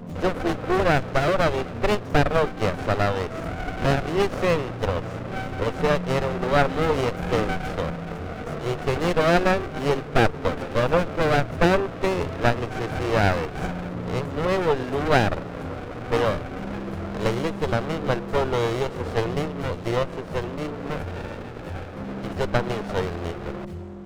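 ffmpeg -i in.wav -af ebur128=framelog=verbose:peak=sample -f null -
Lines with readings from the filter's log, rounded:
Integrated loudness:
  I:         -24.7 LUFS
  Threshold: -34.8 LUFS
Loudness range:
  LRA:         6.2 LU
  Threshold: -44.8 LUFS
  LRA low:   -29.2 LUFS
  LRA high:  -23.0 LUFS
Sample peak:
  Peak:       -6.5 dBFS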